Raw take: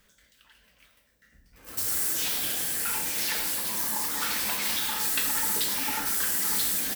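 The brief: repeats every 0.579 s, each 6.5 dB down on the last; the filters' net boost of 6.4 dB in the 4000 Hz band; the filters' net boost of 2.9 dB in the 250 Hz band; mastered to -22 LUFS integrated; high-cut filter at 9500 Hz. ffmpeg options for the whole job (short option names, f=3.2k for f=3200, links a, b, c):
-af "lowpass=9.5k,equalizer=f=250:t=o:g=3.5,equalizer=f=4k:t=o:g=8,aecho=1:1:579|1158|1737|2316|2895|3474:0.473|0.222|0.105|0.0491|0.0231|0.0109,volume=3.5dB"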